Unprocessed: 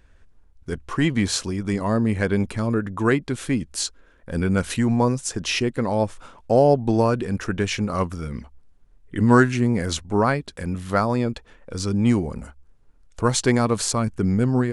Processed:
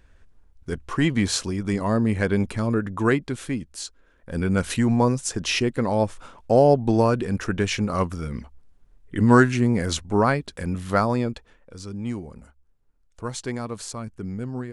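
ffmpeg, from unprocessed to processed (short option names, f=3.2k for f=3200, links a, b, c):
-af "volume=8dB,afade=t=out:st=3.05:d=0.75:silence=0.398107,afade=t=in:st=3.8:d=0.9:silence=0.375837,afade=t=out:st=11.05:d=0.7:silence=0.281838"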